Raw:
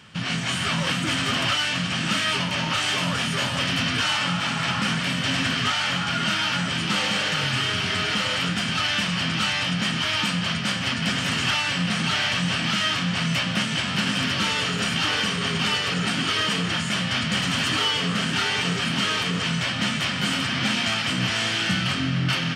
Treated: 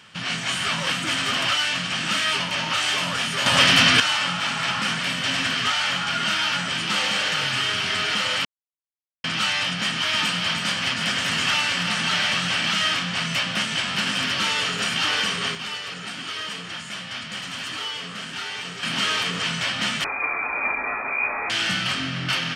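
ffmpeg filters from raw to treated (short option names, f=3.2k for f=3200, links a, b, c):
-filter_complex "[0:a]asettb=1/sr,asplit=3[a][b][c];[a]atrim=end=9.814[d];[b]atrim=start=9.81:end=12.99,asetpts=PTS-STARTPTS,afade=t=in:d=0.004:c=qsin,afade=t=out:st=3.176:d=0.004:c=qsin,aecho=1:1:324:0.473,atrim=end_sample=140238[e];[c]atrim=start=12.986[f];[d][e]acrossfade=d=0.004:c1=hsin:c2=qsin[g];[g][f]acrossfade=d=0.004:c1=qsin:c2=hsin,asettb=1/sr,asplit=3[h][i][j];[h]atrim=end=20.044[k];[i]atrim=start=20.04:end=21.5,asetpts=PTS-STARTPTS,afade=t=in:d=0.004:c=qsin,afade=t=out:st=1.456:d=0.004:c=qsin,lowpass=f=2.2k:t=q:w=0.5098,lowpass=f=2.2k:t=q:w=0.6013,lowpass=f=2.2k:t=q:w=0.9,lowpass=f=2.2k:t=q:w=2.563,afreqshift=-2600[l];[j]atrim=start=21.496[m];[k][l]acrossfade=d=0.004:c1=hsin:c2=qsin[n];[n][m]acrossfade=d=0.004:c1=qsin:c2=hsin,asplit=7[o][p][q][r][s][t][u];[o]atrim=end=3.462[v];[p]atrim=start=3.458:end=4.002,asetpts=PTS-STARTPTS,volume=8.5dB[w];[q]atrim=start=3.998:end=8.45,asetpts=PTS-STARTPTS,afade=t=out:st=4.448:d=0.004:c=hsin[x];[r]atrim=start=8.45:end=9.24,asetpts=PTS-STARTPTS,volume=0[y];[s]atrim=start=9.24:end=15.55,asetpts=PTS-STARTPTS,afade=t=in:d=0.004:c=hsin,afade=t=out:st=6.11:d=0.2:c=log:silence=0.375837[z];[t]atrim=start=15.55:end=18.83,asetpts=PTS-STARTPTS,volume=-8.5dB[aa];[u]atrim=start=18.83,asetpts=PTS-STARTPTS,afade=t=in:d=0.2:c=log:silence=0.375837[ab];[v][w]acrossfade=d=0.004:c1=hsin:c2=hsin[ac];[x][y][z][aa][ab]concat=n=5:v=0:a=1[ad];[ac][ad]acrossfade=d=0.004:c1=hsin:c2=hsin,lowshelf=f=320:g=-10.5,volume=1.5dB"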